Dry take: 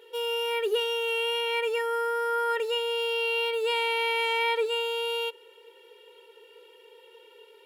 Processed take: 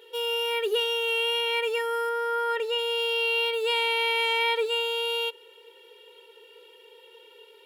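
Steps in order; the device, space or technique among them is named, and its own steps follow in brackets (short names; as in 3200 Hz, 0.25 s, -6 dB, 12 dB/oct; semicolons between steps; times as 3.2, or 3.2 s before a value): 2.09–2.79 high shelf 4700 Hz -6.5 dB; presence and air boost (bell 3500 Hz +4.5 dB 0.85 oct; high shelf 11000 Hz +4 dB)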